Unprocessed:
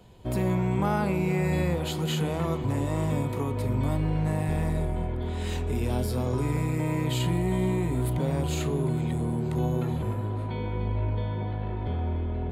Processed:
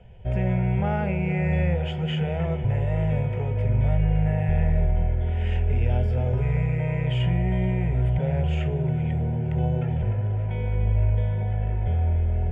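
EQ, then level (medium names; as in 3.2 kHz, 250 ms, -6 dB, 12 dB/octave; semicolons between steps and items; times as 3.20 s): resonant low-pass 3.2 kHz, resonance Q 2.6; tilt EQ -2 dB/octave; static phaser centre 1.1 kHz, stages 6; +1.0 dB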